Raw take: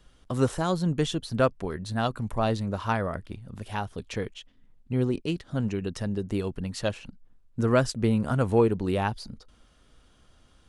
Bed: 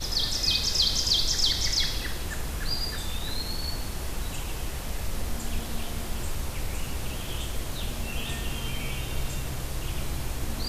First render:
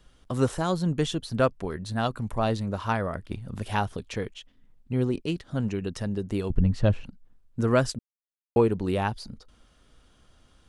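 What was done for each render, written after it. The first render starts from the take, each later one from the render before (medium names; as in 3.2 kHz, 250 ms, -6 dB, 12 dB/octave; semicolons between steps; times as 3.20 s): 3.31–3.97 s: gain +5 dB; 6.50–7.04 s: RIAA curve playback; 7.99–8.56 s: mute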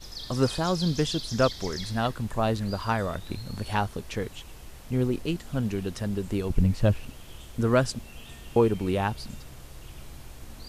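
add bed -12.5 dB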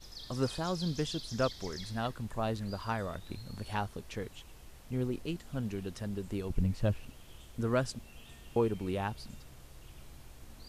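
trim -8 dB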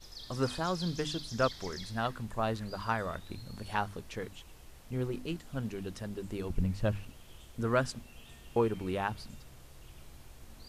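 hum notches 50/100/150/200/250/300 Hz; dynamic bell 1.4 kHz, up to +5 dB, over -47 dBFS, Q 0.84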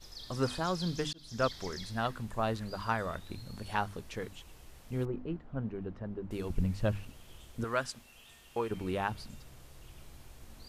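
1.13–1.60 s: fade in equal-power; 5.05–6.31 s: low-pass 1.3 kHz; 7.64–8.71 s: bass shelf 480 Hz -11.5 dB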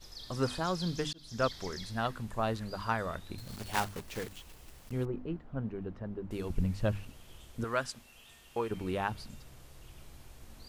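3.38–4.93 s: block-companded coder 3-bit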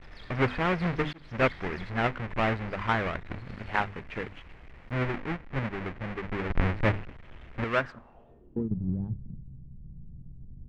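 square wave that keeps the level; low-pass sweep 2.1 kHz -> 160 Hz, 7.77–8.78 s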